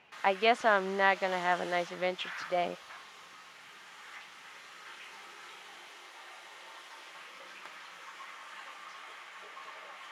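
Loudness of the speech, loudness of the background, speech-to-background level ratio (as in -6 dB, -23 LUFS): -30.0 LUFS, -46.5 LUFS, 16.5 dB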